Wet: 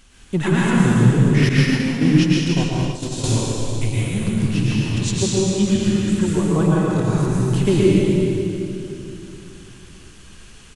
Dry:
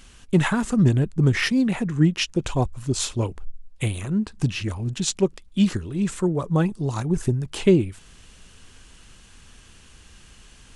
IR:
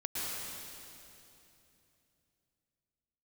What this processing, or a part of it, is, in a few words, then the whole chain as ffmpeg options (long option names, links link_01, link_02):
cave: -filter_complex "[0:a]aecho=1:1:155:0.335[link_01];[1:a]atrim=start_sample=2205[link_02];[link_01][link_02]afir=irnorm=-1:irlink=0,asettb=1/sr,asplit=3[link_03][link_04][link_05];[link_03]atrim=end=1.494[link_06];[link_04]atrim=start=1.49:end=3.24,asetpts=PTS-STARTPTS,afade=type=in:duration=0.004:curve=qsin,afade=type=out:start_time=1.746:duration=0.004:curve=qsin,agate=range=-33dB:threshold=-12dB:ratio=3:detection=peak[link_07];[link_05]atrim=start=3.236[link_08];[link_06][link_07]acrossfade=duration=0.004:curve1=hsin:curve2=qsin[link_09];[link_09][link_08]acrossfade=duration=0.004:curve1=qsin:curve2=hsin"